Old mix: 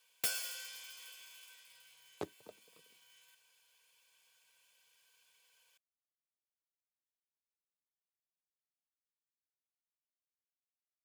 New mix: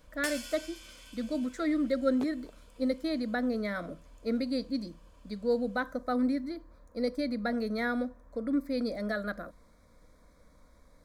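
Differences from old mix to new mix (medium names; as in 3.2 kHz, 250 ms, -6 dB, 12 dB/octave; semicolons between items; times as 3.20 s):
speech: unmuted; first sound: add low-pass 9.7 kHz 12 dB/octave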